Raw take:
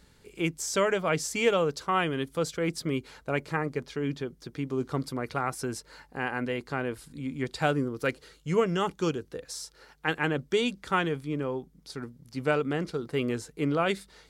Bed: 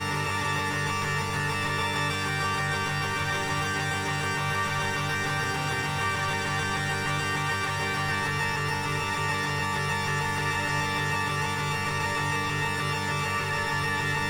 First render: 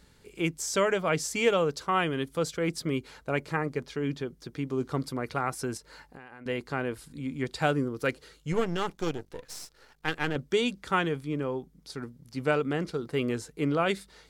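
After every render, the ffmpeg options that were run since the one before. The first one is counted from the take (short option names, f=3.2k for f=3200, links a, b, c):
-filter_complex "[0:a]asettb=1/sr,asplit=3[a][b][c];[a]atrim=end=5.774[d];[b]atrim=start=5.77:end=6.46,asetpts=PTS-STARTPTS,afade=t=in:d=0.004:c=qsin,afade=t=out:st=0.686:d=0.004:c=qsin,acompressor=threshold=-42dB:ratio=12:attack=3.2:release=140:knee=1:detection=peak[e];[c]atrim=start=6.456[f];[d][e]acrossfade=d=0.004:c1=hsin:c2=qsin[g];[g][f]acrossfade=d=0.004:c1=qsin:c2=hsin,asettb=1/sr,asplit=3[h][i][j];[h]atrim=end=8.524[k];[i]atrim=start=8.52:end=10.36,asetpts=PTS-STARTPTS,afade=t=in:d=0.004:c=qsin,afade=t=out:st=1.836:d=0.004:c=qsin,aeval=exprs='if(lt(val(0),0),0.251*val(0),val(0))':c=same[l];[j]atrim=start=10.356[m];[k][l]acrossfade=d=0.004:c1=hsin:c2=qsin[n];[n][m]acrossfade=d=0.004:c1=qsin:c2=hsin"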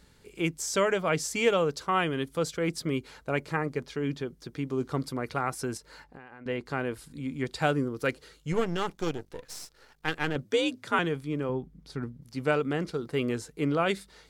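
-filter_complex "[0:a]asettb=1/sr,asplit=3[a][b][c];[a]atrim=end=6.044[d];[b]atrim=start=6.04:end=6.66,asetpts=PTS-STARTPTS,afade=t=in:d=0.004:c=qsin,afade=t=out:st=0.616:d=0.004:c=qsin,aemphasis=mode=reproduction:type=50kf[e];[c]atrim=start=6.656[f];[d][e]acrossfade=d=0.004:c1=hsin:c2=qsin[g];[g][f]acrossfade=d=0.004:c1=qsin:c2=hsin,asettb=1/sr,asplit=3[h][i][j];[h]atrim=end=10.444[k];[i]atrim=start=10.44:end=10.99,asetpts=PTS-STARTPTS,afade=t=in:d=0.004:c=qsin,afade=t=out:st=0.546:d=0.004:c=qsin,afreqshift=58[l];[j]atrim=start=10.986[m];[k][l]acrossfade=d=0.004:c1=hsin:c2=qsin[n];[n][m]acrossfade=d=0.004:c1=qsin:c2=hsin,asettb=1/sr,asplit=3[o][p][q];[o]atrim=end=11.494[r];[p]atrim=start=11.49:end=12.22,asetpts=PTS-STARTPTS,afade=t=in:d=0.004:c=qsin,afade=t=out:st=0.726:d=0.004:c=qsin,bass=f=250:g=7,treble=f=4k:g=-8[s];[q]atrim=start=12.216[t];[r][s]acrossfade=d=0.004:c1=hsin:c2=qsin[u];[u][t]acrossfade=d=0.004:c1=qsin:c2=hsin"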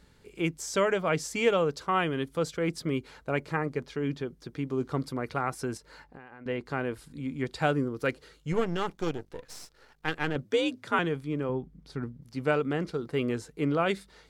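-af "highshelf=f=4.2k:g=-5.5"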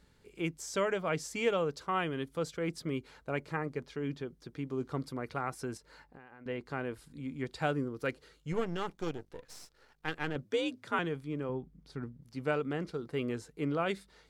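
-af "volume=-5.5dB"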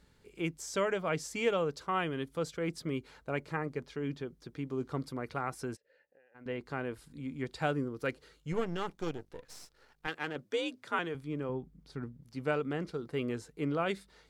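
-filter_complex "[0:a]asplit=3[a][b][c];[a]afade=t=out:st=5.75:d=0.02[d];[b]asplit=3[e][f][g];[e]bandpass=f=530:t=q:w=8,volume=0dB[h];[f]bandpass=f=1.84k:t=q:w=8,volume=-6dB[i];[g]bandpass=f=2.48k:t=q:w=8,volume=-9dB[j];[h][i][j]amix=inputs=3:normalize=0,afade=t=in:st=5.75:d=0.02,afade=t=out:st=6.34:d=0.02[k];[c]afade=t=in:st=6.34:d=0.02[l];[d][k][l]amix=inputs=3:normalize=0,asettb=1/sr,asplit=3[m][n][o];[m]atrim=end=10.074[p];[n]atrim=start=10.07:end=11.15,asetpts=PTS-STARTPTS,afade=t=in:d=0.004:c=qsin,afade=t=out:st=1.076:d=0.004:c=qsin,highpass=f=320:p=1[q];[o]atrim=start=11.146[r];[p][q]acrossfade=d=0.004:c1=hsin:c2=qsin[s];[s][r]acrossfade=d=0.004:c1=qsin:c2=hsin"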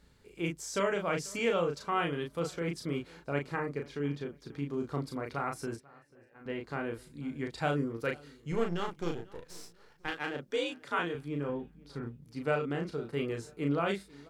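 -filter_complex "[0:a]asplit=2[a][b];[b]adelay=35,volume=-4dB[c];[a][c]amix=inputs=2:normalize=0,asplit=2[d][e];[e]adelay=490,lowpass=f=3.5k:p=1,volume=-23dB,asplit=2[f][g];[g]adelay=490,lowpass=f=3.5k:p=1,volume=0.38,asplit=2[h][i];[i]adelay=490,lowpass=f=3.5k:p=1,volume=0.38[j];[d][f][h][j]amix=inputs=4:normalize=0"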